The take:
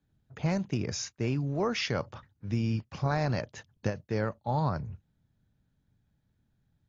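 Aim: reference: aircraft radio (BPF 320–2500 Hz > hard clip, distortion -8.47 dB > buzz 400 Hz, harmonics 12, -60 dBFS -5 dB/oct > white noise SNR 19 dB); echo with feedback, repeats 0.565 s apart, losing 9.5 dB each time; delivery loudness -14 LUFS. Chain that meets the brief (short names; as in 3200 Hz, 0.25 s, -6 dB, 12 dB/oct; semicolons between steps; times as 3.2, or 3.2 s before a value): BPF 320–2500 Hz; feedback echo 0.565 s, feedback 33%, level -9.5 dB; hard clip -31.5 dBFS; buzz 400 Hz, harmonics 12, -60 dBFS -5 dB/oct; white noise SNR 19 dB; gain +25 dB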